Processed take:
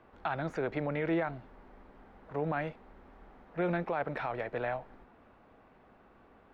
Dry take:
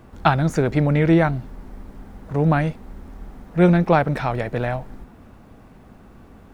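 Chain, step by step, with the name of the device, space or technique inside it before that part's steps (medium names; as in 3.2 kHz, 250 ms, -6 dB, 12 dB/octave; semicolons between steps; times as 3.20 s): DJ mixer with the lows and highs turned down (three-band isolator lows -13 dB, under 350 Hz, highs -21 dB, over 3.6 kHz; peak limiter -15 dBFS, peak gain reduction 11.5 dB); trim -7.5 dB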